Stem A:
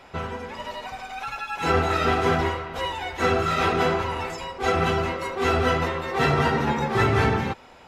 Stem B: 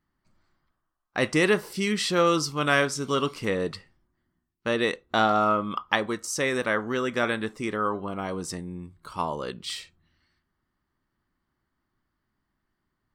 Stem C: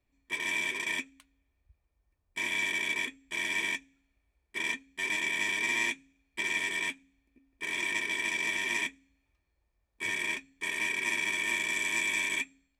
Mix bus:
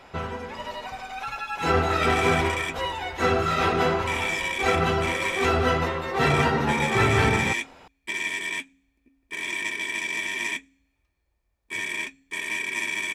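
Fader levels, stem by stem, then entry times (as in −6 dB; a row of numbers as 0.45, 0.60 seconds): −0.5 dB, muted, +2.5 dB; 0.00 s, muted, 1.70 s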